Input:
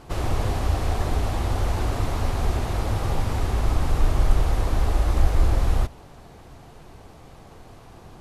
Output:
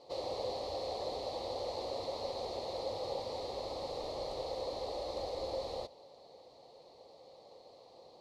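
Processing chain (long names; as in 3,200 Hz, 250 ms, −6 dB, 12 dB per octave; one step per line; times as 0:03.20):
pair of resonant band-passes 1,500 Hz, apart 3 octaves
flat-topped bell 1,300 Hz +9 dB
level +2 dB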